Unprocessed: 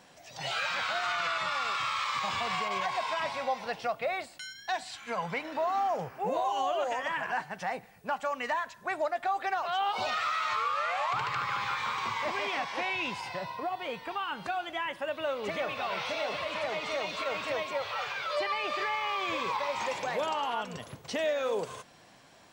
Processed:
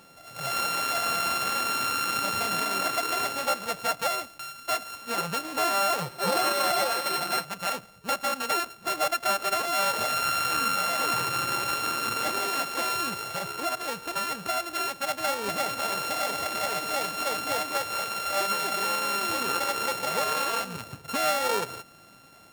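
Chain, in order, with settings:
samples sorted by size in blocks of 32 samples
0:06.01–0:07.45: comb filter 5.6 ms, depth 60%
level +4 dB

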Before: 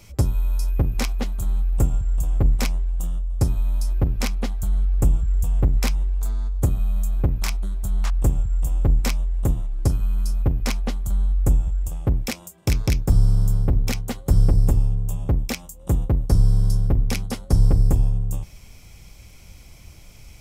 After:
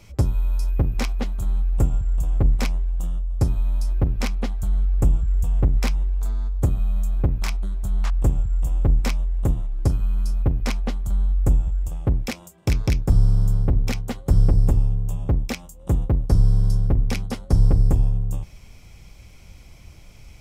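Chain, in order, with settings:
high-shelf EQ 6,200 Hz −8.5 dB

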